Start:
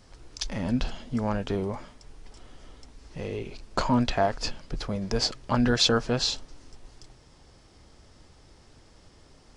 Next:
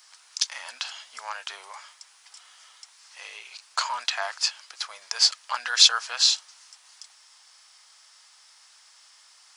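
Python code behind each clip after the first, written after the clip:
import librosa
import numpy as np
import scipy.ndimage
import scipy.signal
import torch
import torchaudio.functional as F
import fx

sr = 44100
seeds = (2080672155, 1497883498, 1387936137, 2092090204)

y = scipy.signal.sosfilt(scipy.signal.butter(4, 1000.0, 'highpass', fs=sr, output='sos'), x)
y = fx.high_shelf(y, sr, hz=4200.0, db=10.0)
y = y * librosa.db_to_amplitude(2.5)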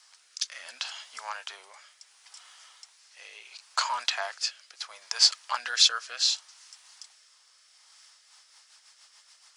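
y = fx.rotary_switch(x, sr, hz=0.7, then_hz=7.0, switch_at_s=7.83)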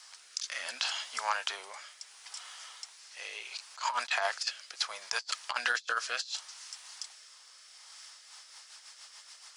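y = fx.over_compress(x, sr, threshold_db=-33.0, ratio=-0.5)
y = fx.low_shelf(y, sr, hz=250.0, db=5.5)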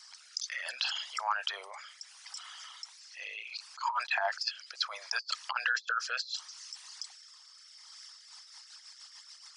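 y = fx.envelope_sharpen(x, sr, power=2.0)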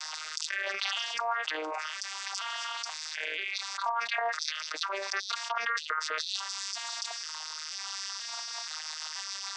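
y = fx.vocoder_arp(x, sr, chord='major triad', root=51, every_ms=482)
y = fx.env_flatten(y, sr, amount_pct=70)
y = y * librosa.db_to_amplitude(-3.0)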